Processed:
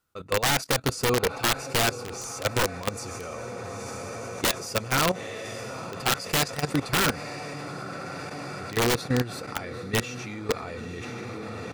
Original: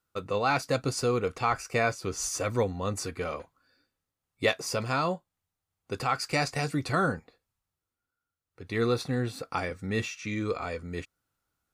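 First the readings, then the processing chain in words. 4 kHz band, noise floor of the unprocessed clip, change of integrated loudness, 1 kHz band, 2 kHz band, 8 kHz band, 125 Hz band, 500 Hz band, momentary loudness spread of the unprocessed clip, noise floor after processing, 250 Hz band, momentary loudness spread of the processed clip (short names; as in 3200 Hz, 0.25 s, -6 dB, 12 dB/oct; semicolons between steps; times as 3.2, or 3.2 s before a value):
+8.5 dB, under -85 dBFS, +2.0 dB, +1.5 dB, +4.0 dB, +6.5 dB, +2.0 dB, +1.0 dB, 8 LU, -38 dBFS, +2.0 dB, 12 LU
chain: diffused feedback echo 0.916 s, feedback 68%, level -9.5 dB; wrapped overs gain 19.5 dB; level quantiser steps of 14 dB; gain +6 dB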